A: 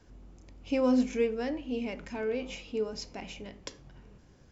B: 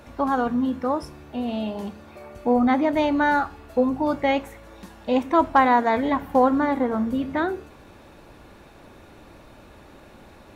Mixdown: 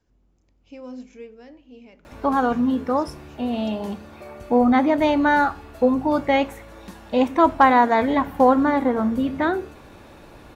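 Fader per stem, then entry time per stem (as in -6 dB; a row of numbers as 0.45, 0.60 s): -12.0, +2.5 dB; 0.00, 2.05 s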